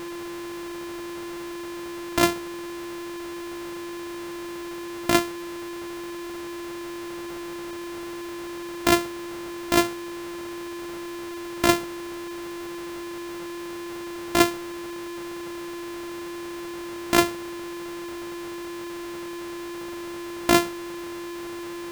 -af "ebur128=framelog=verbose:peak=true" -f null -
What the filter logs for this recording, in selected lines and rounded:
Integrated loudness:
  I:         -29.2 LUFS
  Threshold: -39.2 LUFS
Loudness range:
  LRA:         2.8 LU
  Threshold: -49.2 LUFS
  LRA low:   -30.2 LUFS
  LRA high:  -27.4 LUFS
True peak:
  Peak:       -2.2 dBFS